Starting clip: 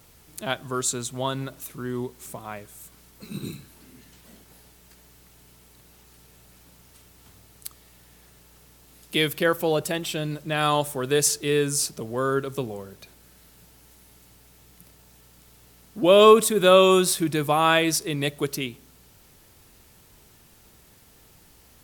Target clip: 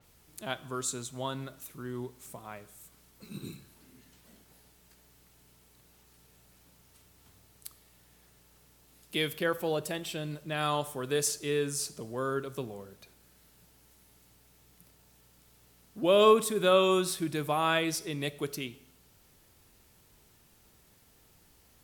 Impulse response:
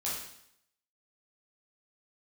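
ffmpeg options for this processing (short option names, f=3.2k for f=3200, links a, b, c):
-filter_complex "[0:a]asplit=2[a][b];[1:a]atrim=start_sample=2205[c];[b][c]afir=irnorm=-1:irlink=0,volume=-18.5dB[d];[a][d]amix=inputs=2:normalize=0,adynamicequalizer=threshold=0.02:dfrequency=5100:dqfactor=0.7:tfrequency=5100:tqfactor=0.7:attack=5:release=100:ratio=0.375:range=2:mode=cutabove:tftype=highshelf,volume=-8.5dB"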